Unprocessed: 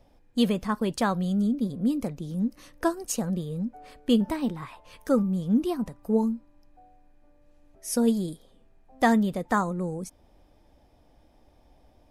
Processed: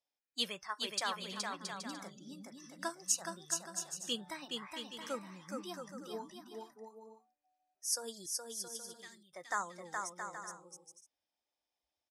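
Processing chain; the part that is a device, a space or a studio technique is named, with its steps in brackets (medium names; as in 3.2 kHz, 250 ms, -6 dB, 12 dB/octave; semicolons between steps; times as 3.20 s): spectral noise reduction 19 dB; piezo pickup straight into a mixer (low-pass 5.8 kHz 12 dB/octave; differentiator); 8.26–9.33 s: amplifier tone stack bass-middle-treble 6-0-2; bouncing-ball echo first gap 420 ms, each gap 0.6×, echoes 5; trim +6 dB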